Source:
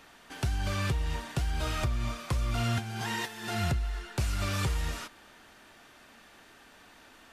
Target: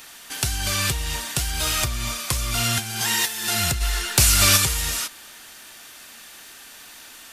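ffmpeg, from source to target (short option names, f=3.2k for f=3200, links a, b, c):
-filter_complex "[0:a]crystalizer=i=7.5:c=0,asplit=3[a][b][c];[a]afade=t=out:st=3.8:d=0.02[d];[b]acontrast=75,afade=t=in:st=3.8:d=0.02,afade=t=out:st=4.56:d=0.02[e];[c]afade=t=in:st=4.56:d=0.02[f];[d][e][f]amix=inputs=3:normalize=0,volume=2dB"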